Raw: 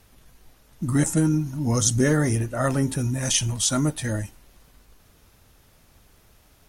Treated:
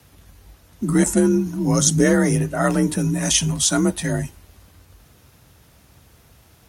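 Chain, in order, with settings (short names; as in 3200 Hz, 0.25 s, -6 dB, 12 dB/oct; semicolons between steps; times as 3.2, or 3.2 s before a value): frequency shift +41 Hz; gain +4 dB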